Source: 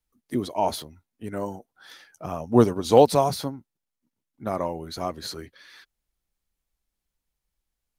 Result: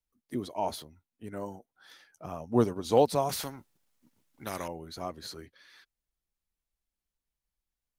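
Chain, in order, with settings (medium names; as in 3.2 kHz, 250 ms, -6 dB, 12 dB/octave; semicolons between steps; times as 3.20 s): 3.29–4.68 s: spectrum-flattening compressor 2:1; trim -7.5 dB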